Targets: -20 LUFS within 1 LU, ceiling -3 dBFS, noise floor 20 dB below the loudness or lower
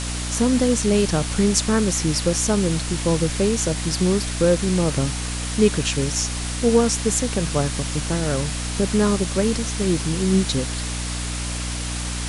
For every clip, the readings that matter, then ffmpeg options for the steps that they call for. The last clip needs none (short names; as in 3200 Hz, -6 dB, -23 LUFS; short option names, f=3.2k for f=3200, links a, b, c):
hum 60 Hz; harmonics up to 300 Hz; hum level -26 dBFS; noise floor -27 dBFS; noise floor target -41 dBFS; loudness -21.0 LUFS; peak -2.0 dBFS; loudness target -20.0 LUFS
-> -af "bandreject=f=60:t=h:w=6,bandreject=f=120:t=h:w=6,bandreject=f=180:t=h:w=6,bandreject=f=240:t=h:w=6,bandreject=f=300:t=h:w=6"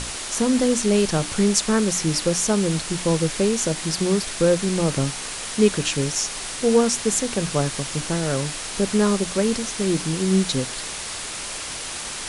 hum none; noise floor -32 dBFS; noise floor target -42 dBFS
-> -af "afftdn=nr=10:nf=-32"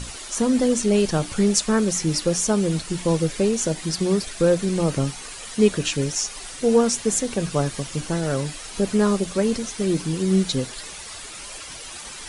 noise floor -37 dBFS; noise floor target -42 dBFS
-> -af "afftdn=nr=6:nf=-37"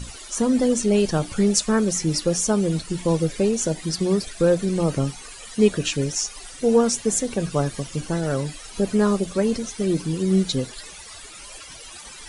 noise floor -41 dBFS; noise floor target -43 dBFS
-> -af "afftdn=nr=6:nf=-41"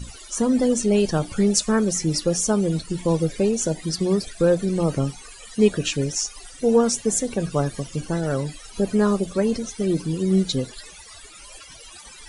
noise floor -44 dBFS; loudness -22.5 LUFS; peak -3.5 dBFS; loudness target -20.0 LUFS
-> -af "volume=2.5dB,alimiter=limit=-3dB:level=0:latency=1"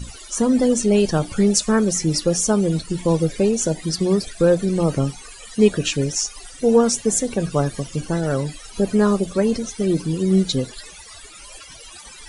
loudness -20.0 LUFS; peak -3.0 dBFS; noise floor -41 dBFS